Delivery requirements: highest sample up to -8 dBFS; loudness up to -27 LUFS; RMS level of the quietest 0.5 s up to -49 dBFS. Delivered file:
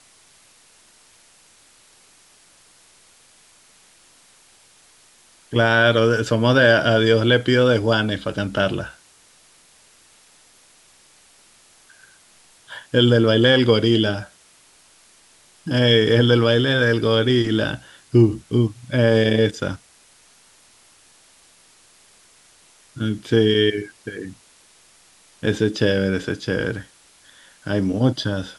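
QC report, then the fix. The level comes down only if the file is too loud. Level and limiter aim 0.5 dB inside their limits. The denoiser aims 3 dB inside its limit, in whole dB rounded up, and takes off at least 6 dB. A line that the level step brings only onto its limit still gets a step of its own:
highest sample -4.0 dBFS: fail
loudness -18.5 LUFS: fail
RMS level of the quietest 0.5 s -53 dBFS: pass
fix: trim -9 dB

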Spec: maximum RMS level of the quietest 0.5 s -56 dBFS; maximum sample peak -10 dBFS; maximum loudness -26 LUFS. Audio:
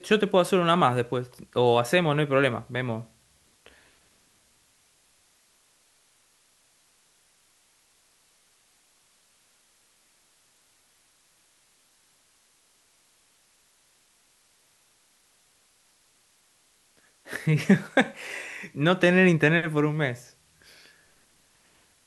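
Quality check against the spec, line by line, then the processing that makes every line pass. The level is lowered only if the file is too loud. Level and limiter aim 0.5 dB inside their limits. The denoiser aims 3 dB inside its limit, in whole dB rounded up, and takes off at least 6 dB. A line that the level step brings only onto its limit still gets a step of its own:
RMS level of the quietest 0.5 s -64 dBFS: pass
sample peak -6.5 dBFS: fail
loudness -24.0 LUFS: fail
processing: trim -2.5 dB; peak limiter -10.5 dBFS

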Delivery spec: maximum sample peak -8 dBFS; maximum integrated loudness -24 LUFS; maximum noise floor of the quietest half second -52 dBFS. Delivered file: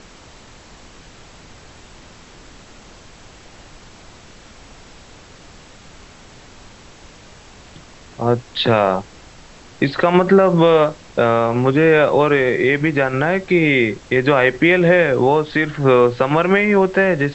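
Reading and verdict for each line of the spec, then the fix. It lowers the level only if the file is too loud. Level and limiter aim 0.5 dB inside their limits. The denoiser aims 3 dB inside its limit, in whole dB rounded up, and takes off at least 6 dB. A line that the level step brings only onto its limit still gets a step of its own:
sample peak -2.0 dBFS: fail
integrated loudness -15.5 LUFS: fail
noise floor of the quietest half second -43 dBFS: fail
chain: noise reduction 6 dB, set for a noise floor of -43 dBFS; trim -9 dB

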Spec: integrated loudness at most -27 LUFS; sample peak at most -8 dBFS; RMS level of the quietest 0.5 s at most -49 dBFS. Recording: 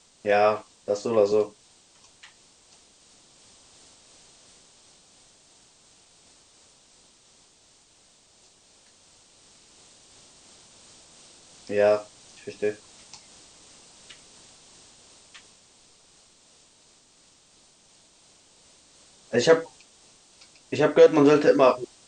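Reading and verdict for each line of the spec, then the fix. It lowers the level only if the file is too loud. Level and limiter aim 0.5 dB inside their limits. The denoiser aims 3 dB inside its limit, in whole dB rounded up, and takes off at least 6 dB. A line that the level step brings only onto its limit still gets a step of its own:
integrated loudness -22.0 LUFS: fail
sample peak -5.0 dBFS: fail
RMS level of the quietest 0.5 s -59 dBFS: pass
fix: trim -5.5 dB

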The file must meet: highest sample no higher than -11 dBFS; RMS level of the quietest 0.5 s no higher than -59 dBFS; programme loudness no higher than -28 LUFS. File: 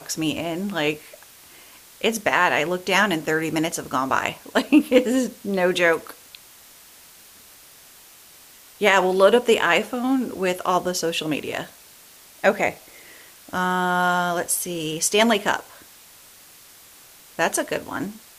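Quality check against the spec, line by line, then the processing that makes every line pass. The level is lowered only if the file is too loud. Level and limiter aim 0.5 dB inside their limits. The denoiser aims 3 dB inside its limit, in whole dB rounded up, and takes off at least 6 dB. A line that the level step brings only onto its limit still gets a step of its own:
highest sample -3.5 dBFS: fail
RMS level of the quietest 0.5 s -48 dBFS: fail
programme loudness -21.5 LUFS: fail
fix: noise reduction 7 dB, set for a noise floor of -48 dBFS; trim -7 dB; peak limiter -11.5 dBFS

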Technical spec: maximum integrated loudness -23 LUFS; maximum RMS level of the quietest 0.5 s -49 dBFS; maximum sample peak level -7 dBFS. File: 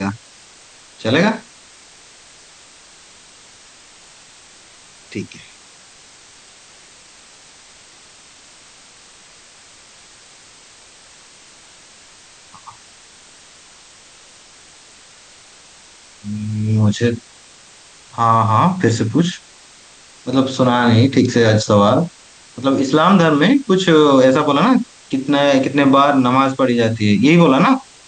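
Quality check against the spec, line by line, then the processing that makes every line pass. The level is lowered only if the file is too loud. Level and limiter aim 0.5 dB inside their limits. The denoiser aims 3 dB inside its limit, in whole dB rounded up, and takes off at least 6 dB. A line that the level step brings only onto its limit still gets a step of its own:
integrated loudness -14.5 LUFS: fail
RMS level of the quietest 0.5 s -45 dBFS: fail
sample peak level -2.0 dBFS: fail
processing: trim -9 dB

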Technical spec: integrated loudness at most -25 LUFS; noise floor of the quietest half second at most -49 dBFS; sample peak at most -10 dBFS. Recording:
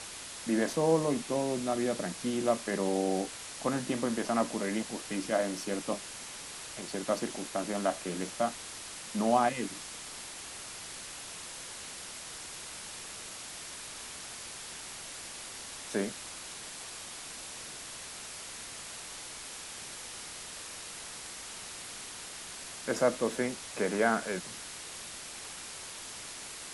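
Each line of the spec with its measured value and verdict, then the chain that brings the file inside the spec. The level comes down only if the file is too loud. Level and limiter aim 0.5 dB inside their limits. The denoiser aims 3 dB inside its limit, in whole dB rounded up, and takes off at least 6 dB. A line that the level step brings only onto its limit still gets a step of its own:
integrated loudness -35.0 LUFS: pass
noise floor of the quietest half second -44 dBFS: fail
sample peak -13.0 dBFS: pass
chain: noise reduction 8 dB, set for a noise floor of -44 dBFS

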